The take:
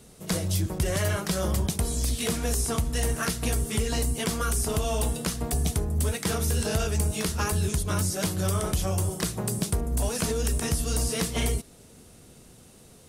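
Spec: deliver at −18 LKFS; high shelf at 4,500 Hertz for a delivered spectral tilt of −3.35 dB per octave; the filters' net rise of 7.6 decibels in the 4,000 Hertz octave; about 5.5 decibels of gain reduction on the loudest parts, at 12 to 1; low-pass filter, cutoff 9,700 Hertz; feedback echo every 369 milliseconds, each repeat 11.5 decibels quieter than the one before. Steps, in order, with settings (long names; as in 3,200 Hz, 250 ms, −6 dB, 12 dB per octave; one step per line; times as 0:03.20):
low-pass filter 9,700 Hz
parametric band 4,000 Hz +7.5 dB
high-shelf EQ 4,500 Hz +4.5 dB
downward compressor 12 to 1, threshold −26 dBFS
repeating echo 369 ms, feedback 27%, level −11.5 dB
level +11.5 dB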